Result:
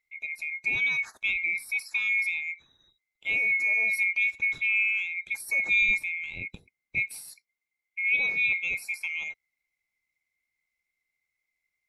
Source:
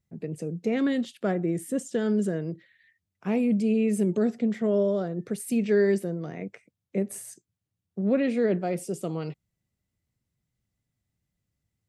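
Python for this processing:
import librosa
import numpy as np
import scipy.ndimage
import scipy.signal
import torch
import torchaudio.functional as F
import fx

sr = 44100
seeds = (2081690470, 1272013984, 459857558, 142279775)

y = fx.band_swap(x, sr, width_hz=2000)
y = fx.low_shelf(y, sr, hz=420.0, db=9.5, at=(5.82, 7.07))
y = fx.lowpass(y, sr, hz=5100.0, slope=24, at=(8.04, 8.54))
y = y * 10.0 ** (-2.0 / 20.0)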